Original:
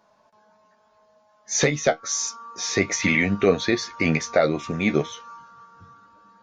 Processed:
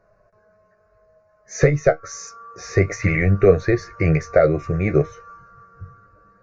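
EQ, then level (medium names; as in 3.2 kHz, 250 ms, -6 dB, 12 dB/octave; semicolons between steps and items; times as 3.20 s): RIAA curve playback; static phaser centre 900 Hz, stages 6; +3.5 dB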